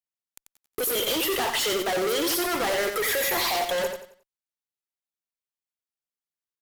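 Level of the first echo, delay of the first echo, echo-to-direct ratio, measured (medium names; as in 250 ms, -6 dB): -7.0 dB, 90 ms, -6.5 dB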